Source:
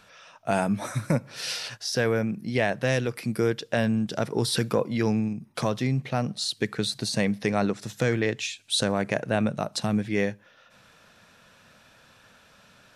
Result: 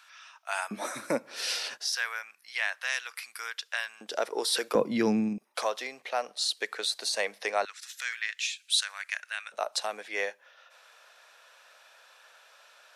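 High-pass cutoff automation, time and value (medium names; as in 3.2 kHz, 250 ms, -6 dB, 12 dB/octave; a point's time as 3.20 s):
high-pass 24 dB/octave
1 kHz
from 0.71 s 290 Hz
from 1.94 s 1.1 kHz
from 4.01 s 440 Hz
from 4.75 s 180 Hz
from 5.38 s 520 Hz
from 7.65 s 1.5 kHz
from 9.52 s 560 Hz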